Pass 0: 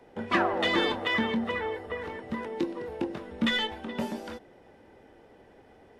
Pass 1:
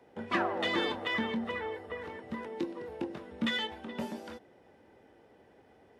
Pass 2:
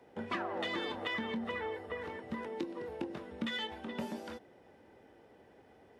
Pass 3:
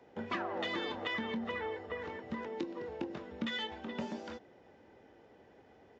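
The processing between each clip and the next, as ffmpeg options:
-af "highpass=66,volume=-5dB"
-af "acompressor=threshold=-33dB:ratio=10"
-af "aresample=16000,aresample=44100"

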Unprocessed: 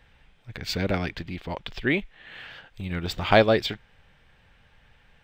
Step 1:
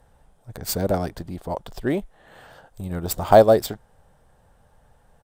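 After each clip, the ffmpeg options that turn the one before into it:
-af "crystalizer=i=6.5:c=0,firequalizer=gain_entry='entry(320,0);entry(640,5);entry(2300,-25);entry(10000,8)':delay=0.05:min_phase=1,adynamicsmooth=sensitivity=8:basefreq=5.6k,volume=1.5dB"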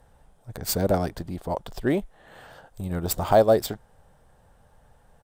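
-af "alimiter=limit=-7dB:level=0:latency=1:release=404"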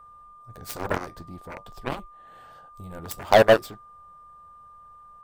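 -af "flanger=delay=9.1:depth=3.7:regen=-61:speed=0.55:shape=sinusoidal,aeval=exprs='0.335*(cos(1*acos(clip(val(0)/0.335,-1,1)))-cos(1*PI/2))+0.0668*(cos(7*acos(clip(val(0)/0.335,-1,1)))-cos(7*PI/2))':c=same,aeval=exprs='val(0)+0.00251*sin(2*PI*1200*n/s)':c=same,volume=5.5dB"

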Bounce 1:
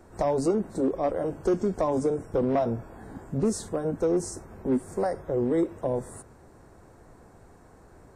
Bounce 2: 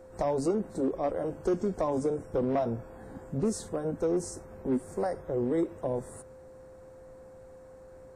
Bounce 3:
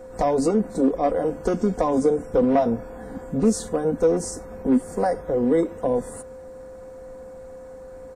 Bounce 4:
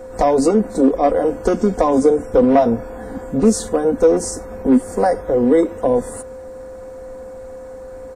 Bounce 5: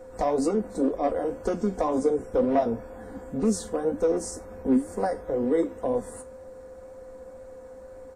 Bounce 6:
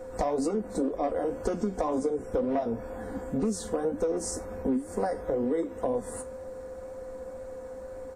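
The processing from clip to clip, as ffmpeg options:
-af "aeval=exprs='val(0)+0.00562*sin(2*PI*520*n/s)':c=same,volume=-3.5dB"
-af "aecho=1:1:4.1:0.53,volume=7.5dB"
-af "equalizer=f=160:t=o:w=0.26:g=-12.5,volume=6.5dB"
-af "flanger=delay=9.1:depth=7.2:regen=63:speed=2:shape=triangular,volume=-6dB"
-af "acompressor=threshold=-29dB:ratio=5,volume=3.5dB"

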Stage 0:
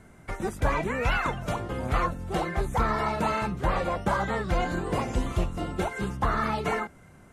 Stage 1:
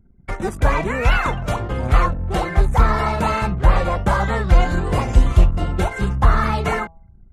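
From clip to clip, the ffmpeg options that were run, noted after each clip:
-af "anlmdn=0.1,bandreject=f=163.7:t=h:w=4,bandreject=f=327.4:t=h:w=4,bandreject=f=491.1:t=h:w=4,bandreject=f=654.8:t=h:w=4,bandreject=f=818.5:t=h:w=4,bandreject=f=982.2:t=h:w=4,bandreject=f=1.1459k:t=h:w=4,asubboost=boost=3:cutoff=130,volume=7dB"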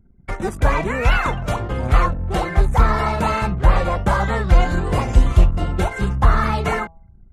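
-af anull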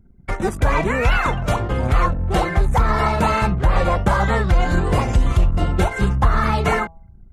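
-af "alimiter=limit=-9dB:level=0:latency=1:release=137,volume=2.5dB"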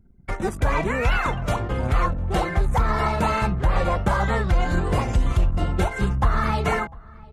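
-filter_complex "[0:a]asplit=2[a][b];[b]adelay=699.7,volume=-23dB,highshelf=f=4k:g=-15.7[c];[a][c]amix=inputs=2:normalize=0,volume=-4dB"

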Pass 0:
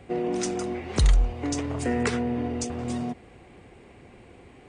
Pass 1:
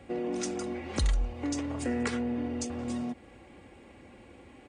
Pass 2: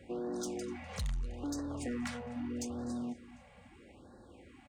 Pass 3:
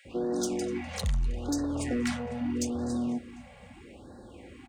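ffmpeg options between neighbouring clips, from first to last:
-filter_complex "[0:a]highpass=48,aecho=1:1:3.6:0.44,asplit=2[a][b];[b]acompressor=threshold=-33dB:ratio=6,volume=-1.5dB[c];[a][c]amix=inputs=2:normalize=0,volume=-8dB"
-af "aecho=1:1:249|498|747:0.0794|0.0389|0.0191,asoftclip=type=tanh:threshold=-28dB,afftfilt=real='re*(1-between(b*sr/1024,300*pow(2700/300,0.5+0.5*sin(2*PI*0.78*pts/sr))/1.41,300*pow(2700/300,0.5+0.5*sin(2*PI*0.78*pts/sr))*1.41))':imag='im*(1-between(b*sr/1024,300*pow(2700/300,0.5+0.5*sin(2*PI*0.78*pts/sr))/1.41,300*pow(2700/300,0.5+0.5*sin(2*PI*0.78*pts/sr))*1.41))':win_size=1024:overlap=0.75,volume=-3.5dB"
-filter_complex "[0:a]acrossover=split=1200[a][b];[a]adelay=50[c];[c][b]amix=inputs=2:normalize=0,volume=8dB"

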